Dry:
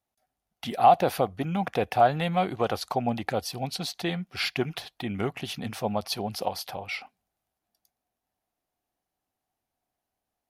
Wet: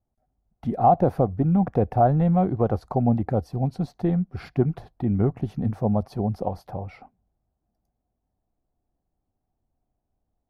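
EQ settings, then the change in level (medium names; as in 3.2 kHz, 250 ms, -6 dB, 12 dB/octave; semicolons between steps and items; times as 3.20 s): tilt EQ -4 dB/octave; peaking EQ 3 kHz -13.5 dB 1.5 oct; treble shelf 3.8 kHz -6 dB; 0.0 dB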